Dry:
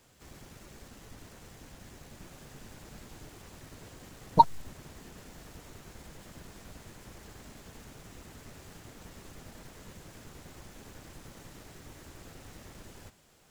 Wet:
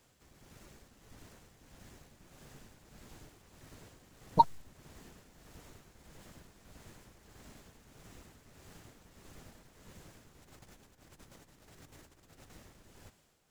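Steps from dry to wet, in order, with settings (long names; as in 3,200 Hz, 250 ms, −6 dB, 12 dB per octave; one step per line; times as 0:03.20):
0:10.42–0:12.50: compressor whose output falls as the input rises −51 dBFS, ratio −0.5
amplitude tremolo 1.6 Hz, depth 55%
level −4.5 dB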